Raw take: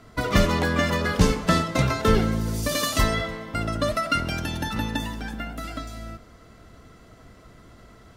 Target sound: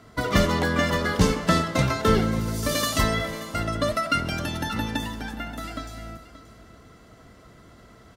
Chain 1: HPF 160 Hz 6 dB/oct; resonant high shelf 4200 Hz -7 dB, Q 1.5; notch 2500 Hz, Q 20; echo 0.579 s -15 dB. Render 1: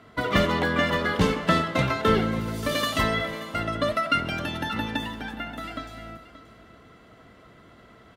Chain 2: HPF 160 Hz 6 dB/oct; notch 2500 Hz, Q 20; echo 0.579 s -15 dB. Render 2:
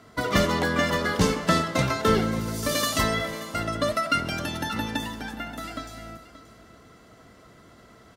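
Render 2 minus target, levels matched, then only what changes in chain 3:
125 Hz band -2.5 dB
change: HPF 56 Hz 6 dB/oct

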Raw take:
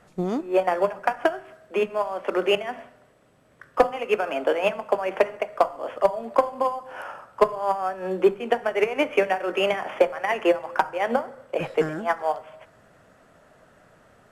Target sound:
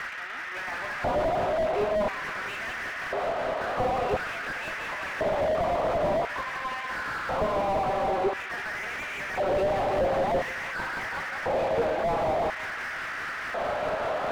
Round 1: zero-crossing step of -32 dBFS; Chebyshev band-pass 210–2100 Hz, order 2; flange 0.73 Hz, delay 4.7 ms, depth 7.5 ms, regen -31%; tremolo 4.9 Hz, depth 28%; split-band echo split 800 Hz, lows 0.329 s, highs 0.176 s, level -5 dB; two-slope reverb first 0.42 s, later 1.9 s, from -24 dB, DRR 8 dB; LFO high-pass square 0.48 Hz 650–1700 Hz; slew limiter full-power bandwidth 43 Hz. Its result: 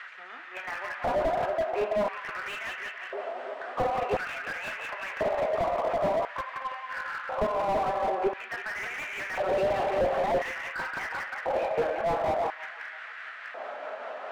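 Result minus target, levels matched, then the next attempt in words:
zero-crossing step: distortion -9 dB
zero-crossing step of -20.5 dBFS; Chebyshev band-pass 210–2100 Hz, order 2; flange 0.73 Hz, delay 4.7 ms, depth 7.5 ms, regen -31%; tremolo 4.9 Hz, depth 28%; split-band echo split 800 Hz, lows 0.329 s, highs 0.176 s, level -5 dB; two-slope reverb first 0.42 s, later 1.9 s, from -24 dB, DRR 8 dB; LFO high-pass square 0.48 Hz 650–1700 Hz; slew limiter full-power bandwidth 43 Hz

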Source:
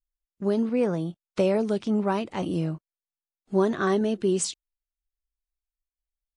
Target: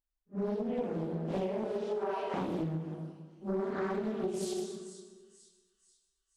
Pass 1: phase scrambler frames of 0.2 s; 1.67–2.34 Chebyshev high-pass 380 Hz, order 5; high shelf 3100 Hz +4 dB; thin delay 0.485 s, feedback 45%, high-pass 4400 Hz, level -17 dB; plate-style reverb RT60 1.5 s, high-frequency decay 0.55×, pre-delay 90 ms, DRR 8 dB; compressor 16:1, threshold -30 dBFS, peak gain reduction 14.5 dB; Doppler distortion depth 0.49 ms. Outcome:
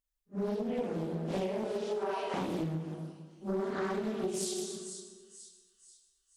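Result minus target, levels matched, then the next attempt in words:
8000 Hz band +8.0 dB
phase scrambler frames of 0.2 s; 1.67–2.34 Chebyshev high-pass 380 Hz, order 5; high shelf 3100 Hz -7 dB; thin delay 0.485 s, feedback 45%, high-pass 4400 Hz, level -17 dB; plate-style reverb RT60 1.5 s, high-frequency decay 0.55×, pre-delay 90 ms, DRR 8 dB; compressor 16:1, threshold -30 dBFS, peak gain reduction 14.5 dB; Doppler distortion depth 0.49 ms

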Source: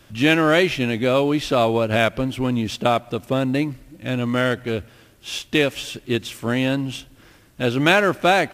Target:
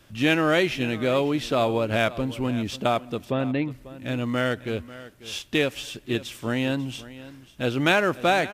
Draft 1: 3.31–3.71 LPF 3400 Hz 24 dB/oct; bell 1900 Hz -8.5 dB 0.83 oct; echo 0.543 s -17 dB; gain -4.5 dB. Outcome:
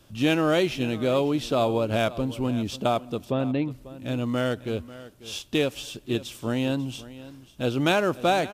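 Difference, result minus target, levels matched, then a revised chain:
2000 Hz band -4.5 dB
3.31–3.71 LPF 3400 Hz 24 dB/oct; echo 0.543 s -17 dB; gain -4.5 dB

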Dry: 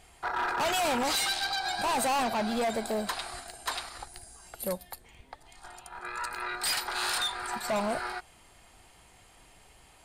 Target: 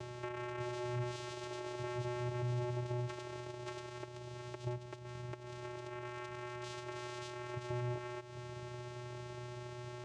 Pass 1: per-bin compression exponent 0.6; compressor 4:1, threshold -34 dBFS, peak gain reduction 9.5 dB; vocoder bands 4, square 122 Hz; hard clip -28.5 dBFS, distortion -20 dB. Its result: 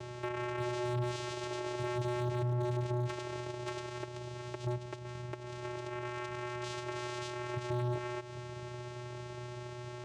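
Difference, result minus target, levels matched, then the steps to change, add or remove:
compressor: peak gain reduction -5 dB
change: compressor 4:1, threshold -41 dBFS, peak gain reduction 15 dB

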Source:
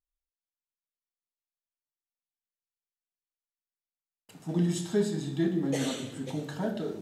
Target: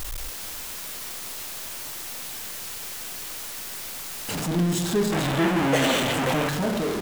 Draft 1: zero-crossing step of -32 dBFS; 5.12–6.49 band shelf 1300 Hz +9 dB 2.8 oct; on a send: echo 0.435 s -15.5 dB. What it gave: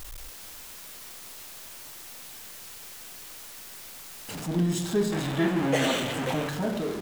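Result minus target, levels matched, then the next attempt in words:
zero-crossing step: distortion -6 dB
zero-crossing step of -23.5 dBFS; 5.12–6.49 band shelf 1300 Hz +9 dB 2.8 oct; on a send: echo 0.435 s -15.5 dB

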